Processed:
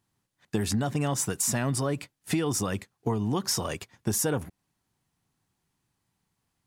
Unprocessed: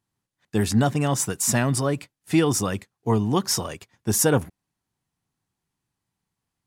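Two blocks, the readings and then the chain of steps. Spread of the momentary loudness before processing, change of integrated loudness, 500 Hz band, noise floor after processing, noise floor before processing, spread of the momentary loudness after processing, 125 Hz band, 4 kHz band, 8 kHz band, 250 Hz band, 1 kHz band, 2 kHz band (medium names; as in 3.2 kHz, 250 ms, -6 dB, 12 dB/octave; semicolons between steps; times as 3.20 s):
9 LU, -5.5 dB, -6.5 dB, -80 dBFS, -84 dBFS, 8 LU, -5.5 dB, -4.0 dB, -4.5 dB, -6.0 dB, -6.5 dB, -6.0 dB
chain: in parallel at +1 dB: peak limiter -15.5 dBFS, peak gain reduction 7.5 dB; on the sum: compression 6:1, threshold -22 dBFS, peak gain reduction 11.5 dB; trim -2.5 dB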